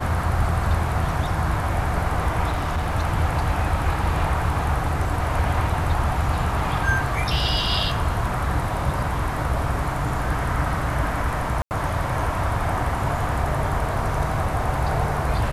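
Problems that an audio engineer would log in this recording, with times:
2.50–2.95 s: clipped -20 dBFS
11.62–11.71 s: dropout 89 ms

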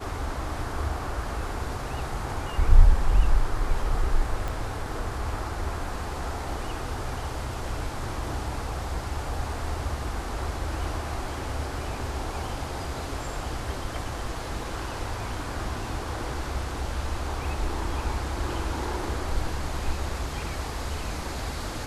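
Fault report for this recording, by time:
4.48 s: pop

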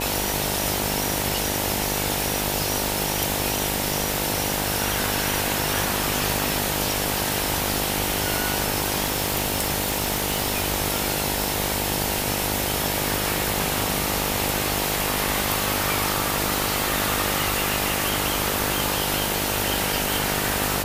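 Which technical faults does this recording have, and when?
buzz 50 Hz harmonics 19 -29 dBFS
9.06–10.64 s: clipped -16 dBFS

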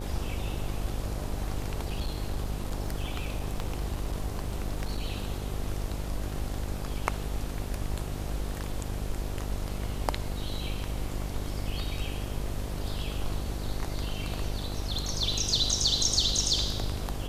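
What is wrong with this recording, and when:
buzz 50 Hz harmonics 16 -35 dBFS
1.81–5.06 s: clipped -25.5 dBFS

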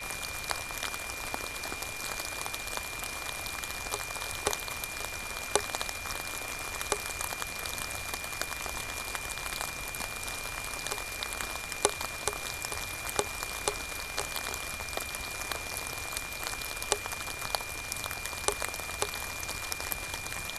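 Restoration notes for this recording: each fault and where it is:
crackle 13 per s -42 dBFS
whine 2.4 kHz -40 dBFS

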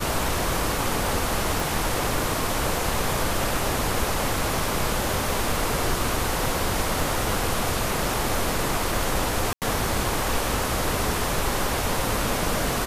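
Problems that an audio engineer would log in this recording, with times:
1.60 s: pop
9.53–9.62 s: dropout 88 ms

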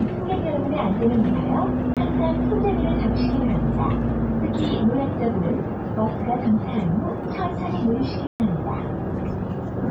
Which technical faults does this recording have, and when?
1.94–1.97 s: dropout 27 ms
8.27–8.40 s: dropout 129 ms

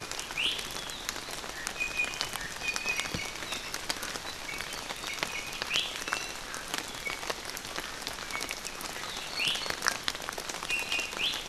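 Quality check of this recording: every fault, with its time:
no faults

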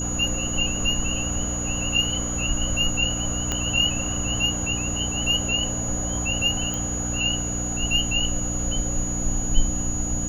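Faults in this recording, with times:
hum 60 Hz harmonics 5 -30 dBFS
whine 6.8 kHz -28 dBFS
3.52 s: pop -10 dBFS
6.74 s: pop

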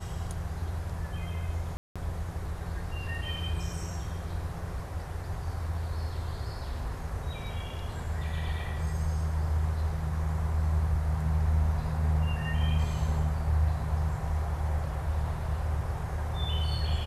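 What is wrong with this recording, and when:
1.77–1.96 s: dropout 186 ms

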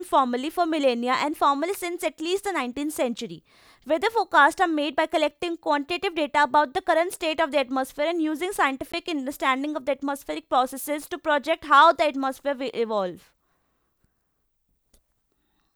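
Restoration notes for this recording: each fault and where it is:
8.92–8.94 s: dropout 15 ms

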